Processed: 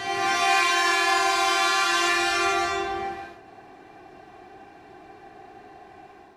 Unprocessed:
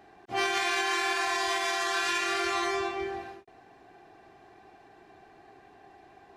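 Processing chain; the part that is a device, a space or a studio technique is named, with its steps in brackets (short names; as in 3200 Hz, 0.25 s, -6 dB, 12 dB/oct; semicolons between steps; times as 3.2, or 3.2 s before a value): reverse reverb (reverse; reverb RT60 2.0 s, pre-delay 14 ms, DRR -6.5 dB; reverse)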